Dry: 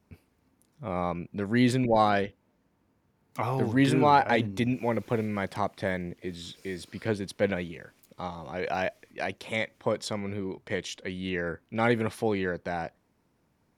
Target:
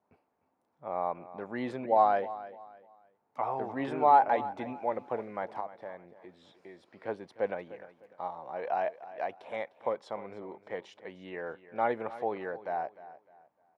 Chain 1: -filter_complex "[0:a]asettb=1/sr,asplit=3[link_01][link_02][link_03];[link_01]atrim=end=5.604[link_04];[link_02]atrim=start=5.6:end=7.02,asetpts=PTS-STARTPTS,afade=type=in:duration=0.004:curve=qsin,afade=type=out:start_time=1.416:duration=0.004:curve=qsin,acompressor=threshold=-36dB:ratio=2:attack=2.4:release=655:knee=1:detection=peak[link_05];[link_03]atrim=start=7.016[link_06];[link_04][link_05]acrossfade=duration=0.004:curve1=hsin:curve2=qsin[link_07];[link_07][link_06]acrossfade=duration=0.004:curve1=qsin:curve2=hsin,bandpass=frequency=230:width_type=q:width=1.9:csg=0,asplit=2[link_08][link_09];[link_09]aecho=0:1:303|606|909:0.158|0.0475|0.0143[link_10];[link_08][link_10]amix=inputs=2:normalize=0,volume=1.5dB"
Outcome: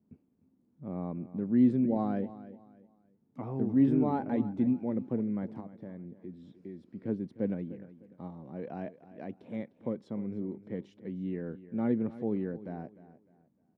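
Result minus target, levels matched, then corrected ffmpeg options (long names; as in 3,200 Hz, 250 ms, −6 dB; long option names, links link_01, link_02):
1,000 Hz band −15.5 dB
-filter_complex "[0:a]asettb=1/sr,asplit=3[link_01][link_02][link_03];[link_01]atrim=end=5.604[link_04];[link_02]atrim=start=5.6:end=7.02,asetpts=PTS-STARTPTS,afade=type=in:duration=0.004:curve=qsin,afade=type=out:start_time=1.416:duration=0.004:curve=qsin,acompressor=threshold=-36dB:ratio=2:attack=2.4:release=655:knee=1:detection=peak[link_05];[link_03]atrim=start=7.016[link_06];[link_04][link_05]acrossfade=duration=0.004:curve1=hsin:curve2=qsin[link_07];[link_07][link_06]acrossfade=duration=0.004:curve1=qsin:curve2=hsin,bandpass=frequency=780:width_type=q:width=1.9:csg=0,asplit=2[link_08][link_09];[link_09]aecho=0:1:303|606|909:0.158|0.0475|0.0143[link_10];[link_08][link_10]amix=inputs=2:normalize=0,volume=1.5dB"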